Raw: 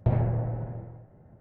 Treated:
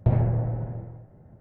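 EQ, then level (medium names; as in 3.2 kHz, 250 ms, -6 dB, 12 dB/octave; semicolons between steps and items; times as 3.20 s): bass shelf 360 Hz +3.5 dB; 0.0 dB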